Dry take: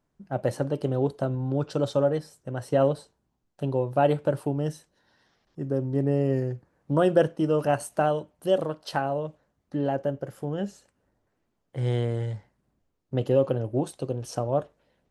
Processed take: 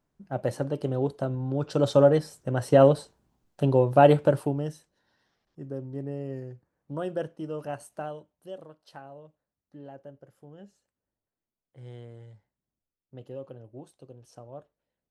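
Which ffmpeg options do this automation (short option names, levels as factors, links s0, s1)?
-af "volume=1.78,afade=t=in:st=1.59:d=0.42:silence=0.446684,afade=t=out:st=4.16:d=0.52:silence=0.334965,afade=t=out:st=4.68:d=1.49:silence=0.473151,afade=t=out:st=7.89:d=0.66:silence=0.446684"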